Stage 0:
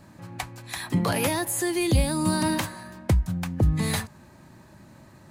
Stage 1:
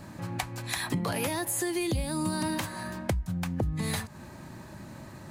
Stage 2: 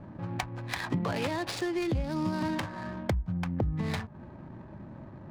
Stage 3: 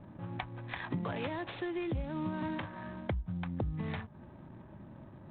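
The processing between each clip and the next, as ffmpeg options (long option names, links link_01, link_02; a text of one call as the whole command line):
ffmpeg -i in.wav -af "acompressor=threshold=-34dB:ratio=5,volume=5.5dB" out.wav
ffmpeg -i in.wav -af "acrusher=samples=3:mix=1:aa=0.000001,adynamicsmooth=sensitivity=6:basefreq=820" out.wav
ffmpeg -i in.wav -af "volume=-5.5dB" -ar 8000 -c:a adpcm_ima_wav out.wav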